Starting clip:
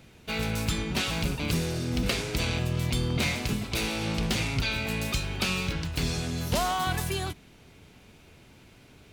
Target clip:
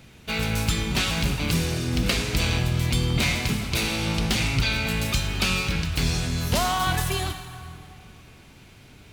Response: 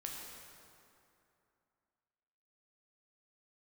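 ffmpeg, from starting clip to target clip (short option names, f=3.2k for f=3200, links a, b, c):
-filter_complex "[0:a]asplit=2[a][b];[b]equalizer=f=450:w=1.1:g=-11.5[c];[1:a]atrim=start_sample=2205[d];[c][d]afir=irnorm=-1:irlink=0,volume=1.5dB[e];[a][e]amix=inputs=2:normalize=0"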